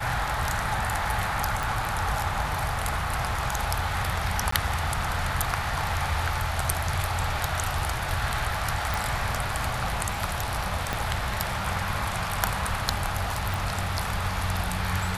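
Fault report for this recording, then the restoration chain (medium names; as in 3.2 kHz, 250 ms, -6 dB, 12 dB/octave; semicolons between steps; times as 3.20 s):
1.63 s: pop
4.51–4.52 s: dropout 14 ms
8.94 s: pop
10.93 s: pop -12 dBFS
13.54 s: pop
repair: de-click; interpolate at 4.51 s, 14 ms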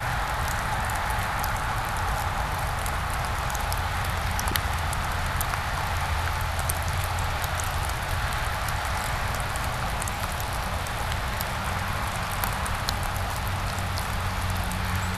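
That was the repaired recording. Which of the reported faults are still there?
10.93 s: pop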